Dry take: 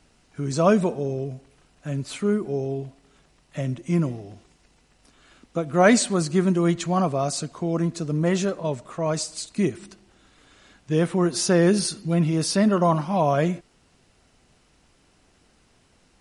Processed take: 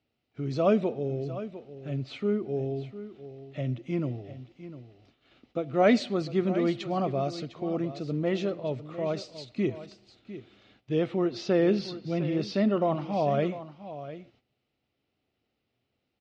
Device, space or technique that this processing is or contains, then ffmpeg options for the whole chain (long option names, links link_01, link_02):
guitar cabinet: -filter_complex "[0:a]highpass=93,equalizer=frequency=120:width_type=q:width=4:gain=5,equalizer=frequency=170:width_type=q:width=4:gain=-8,equalizer=frequency=1000:width_type=q:width=4:gain=-10,equalizer=frequency=1600:width_type=q:width=4:gain=-9,lowpass=frequency=4100:width=0.5412,lowpass=frequency=4100:width=1.3066,aecho=1:1:703:0.211,agate=range=-13dB:threshold=-58dB:ratio=16:detection=peak,asettb=1/sr,asplit=3[link_01][link_02][link_03];[link_01]atrim=end=11.254[link_04];[link_02]atrim=start=11.25:end=12.98,asetpts=PTS-STARTPTS,afade=type=in:duration=0.004:curve=qsin,afade=type=out:start_time=1.726:duration=0.004:curve=qsin,lowpass=5900[link_05];[link_03]atrim=start=12.976[link_06];[link_04][link_05]acrossfade=duration=0.004:curve1=hsin:curve2=qsin[link_07];[link_07][link_06]acrossfade=duration=0.004:curve1=qsin:curve2=hsin,volume=-3.5dB"